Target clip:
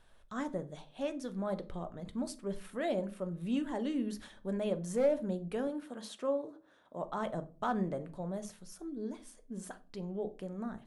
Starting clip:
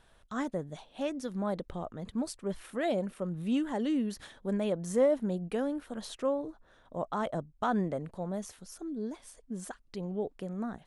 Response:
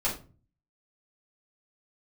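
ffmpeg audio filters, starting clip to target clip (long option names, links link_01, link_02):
-filter_complex "[0:a]asettb=1/sr,asplit=3[link_01][link_02][link_03];[link_01]atrim=end=5.674[link_04];[link_02]atrim=start=5.67:end=7.03,asetpts=PTS-STARTPTS,afade=type=in:duration=0.004:curve=qsin,afade=type=out:start_time=1.356:duration=0.004:curve=qsin,highpass=180[link_05];[link_03]atrim=start=7.026[link_06];[link_04][link_05]acrossfade=duration=0.004:curve1=hsin:curve2=qsin[link_07];[link_07][link_06]acrossfade=duration=0.004:curve1=qsin:curve2=hsin,asoftclip=type=hard:threshold=-20.5dB,asplit=2[link_08][link_09];[1:a]atrim=start_sample=2205[link_10];[link_09][link_10]afir=irnorm=-1:irlink=0,volume=-15.5dB[link_11];[link_08][link_11]amix=inputs=2:normalize=0,volume=-5dB"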